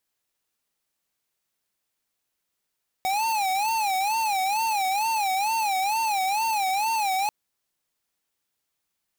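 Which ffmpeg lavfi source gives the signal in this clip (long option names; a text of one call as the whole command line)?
ffmpeg -f lavfi -i "aevalsrc='0.0596*(2*lt(mod((829*t-78/(2*PI*2.2)*sin(2*PI*2.2*t)),1),0.5)-1)':duration=4.24:sample_rate=44100" out.wav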